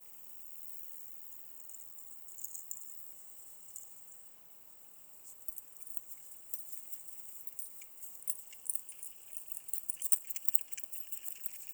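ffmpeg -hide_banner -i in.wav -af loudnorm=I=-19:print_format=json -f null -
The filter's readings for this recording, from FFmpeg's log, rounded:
"input_i" : "-37.5",
"input_tp" : "-3.3",
"input_lra" : "11.1",
"input_thresh" : "-48.0",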